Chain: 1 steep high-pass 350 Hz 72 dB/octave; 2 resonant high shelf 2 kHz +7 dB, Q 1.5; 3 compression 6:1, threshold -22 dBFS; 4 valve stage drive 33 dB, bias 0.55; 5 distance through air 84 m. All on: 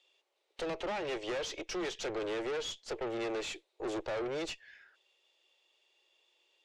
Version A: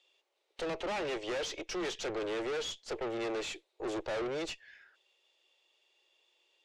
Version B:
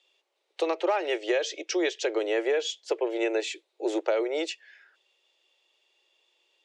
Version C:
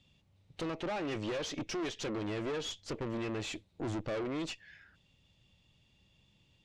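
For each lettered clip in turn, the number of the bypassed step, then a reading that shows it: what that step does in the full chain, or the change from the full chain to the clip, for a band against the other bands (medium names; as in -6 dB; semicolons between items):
3, mean gain reduction 2.5 dB; 4, crest factor change +7.5 dB; 1, 125 Hz band +11.5 dB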